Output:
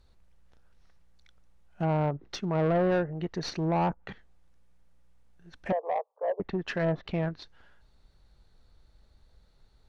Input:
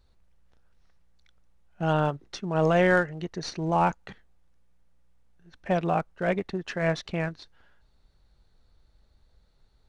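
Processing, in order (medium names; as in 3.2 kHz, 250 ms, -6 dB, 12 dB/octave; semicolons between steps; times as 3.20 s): low-pass that closes with the level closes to 790 Hz, closed at -22.5 dBFS; 5.72–6.40 s: Chebyshev band-pass 450–1100 Hz, order 4; saturation -23 dBFS, distortion -12 dB; trim +2 dB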